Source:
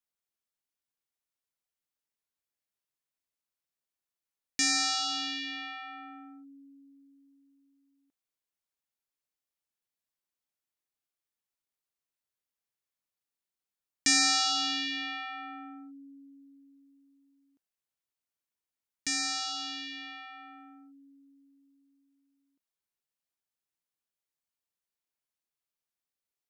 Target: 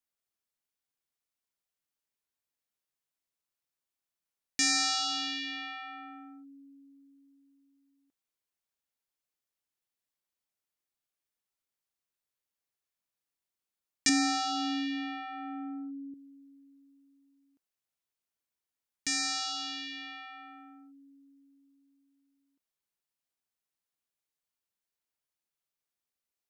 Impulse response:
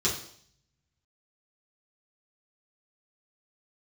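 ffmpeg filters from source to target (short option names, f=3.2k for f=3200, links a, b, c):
-filter_complex "[0:a]asettb=1/sr,asplit=3[a][b][c];[a]atrim=end=14.094[d];[b]atrim=start=14.09:end=16.14,asetpts=PTS-STARTPTS,afade=t=in:d=0.004:c=qsin,afade=t=out:st=2.046:d=0.004:c=qsin,tiltshelf=f=970:g=9.5[e];[c]atrim=start=16.136[f];[d][e]acrossfade=d=0.004:c1=hsin:c2=qsin[g];[g][f]acrossfade=d=0.004:c1=qsin:c2=hsin"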